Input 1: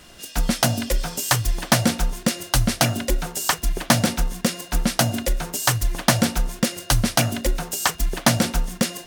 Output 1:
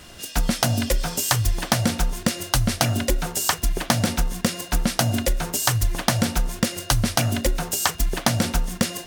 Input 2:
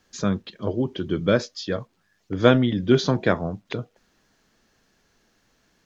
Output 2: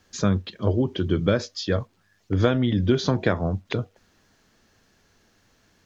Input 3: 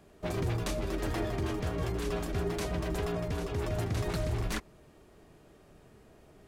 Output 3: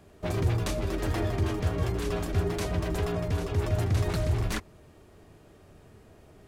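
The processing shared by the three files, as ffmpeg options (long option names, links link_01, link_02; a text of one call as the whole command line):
ffmpeg -i in.wav -af "acompressor=threshold=-19dB:ratio=6,equalizer=frequency=92:width=3.8:gain=9.5,volume=2.5dB" out.wav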